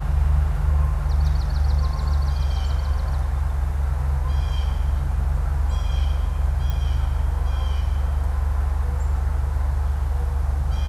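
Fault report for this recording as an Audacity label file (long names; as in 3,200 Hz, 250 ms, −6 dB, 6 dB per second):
6.700000	6.700000	click −15 dBFS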